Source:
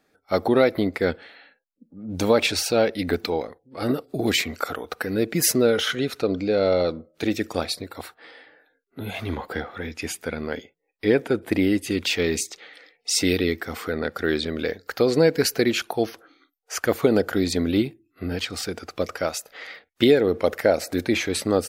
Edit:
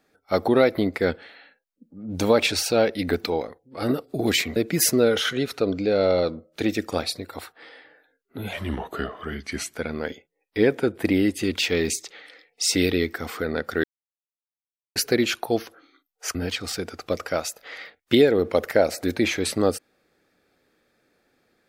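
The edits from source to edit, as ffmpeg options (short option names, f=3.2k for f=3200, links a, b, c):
-filter_complex "[0:a]asplit=7[a][b][c][d][e][f][g];[a]atrim=end=4.562[h];[b]atrim=start=5.178:end=9.154[i];[c]atrim=start=9.15:end=10.23,asetpts=PTS-STARTPTS,asetrate=38808,aresample=44100[j];[d]atrim=start=10.226:end=14.31,asetpts=PTS-STARTPTS,afade=t=out:st=4.08:d=0.004:c=hsin[k];[e]atrim=start=14.31:end=15.43,asetpts=PTS-STARTPTS,volume=0[l];[f]atrim=start=15.43:end=16.822,asetpts=PTS-STARTPTS,afade=t=in:d=0.004:c=hsin[m];[g]atrim=start=18.238[n];[h][i]acrossfade=d=0.004:c1=hsin:c2=hsin[o];[o][j]acrossfade=d=0.004:c1=hsin:c2=hsin[p];[k][l][m]concat=n=3:v=0:a=1[q];[p][q]acrossfade=d=0.004:c1=hsin:c2=hsin[r];[r][n]acrossfade=d=0.004:c1=hsin:c2=hsin"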